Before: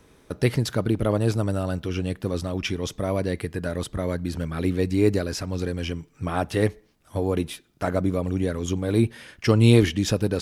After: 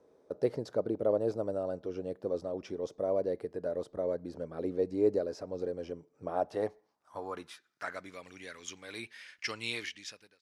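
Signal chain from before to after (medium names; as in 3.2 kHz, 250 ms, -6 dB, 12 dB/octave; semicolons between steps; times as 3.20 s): fade out at the end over 0.90 s; band-pass sweep 530 Hz -> 2.2 kHz, 6.23–8.14 s; resonant high shelf 3.8 kHz +8.5 dB, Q 1.5; trim -1 dB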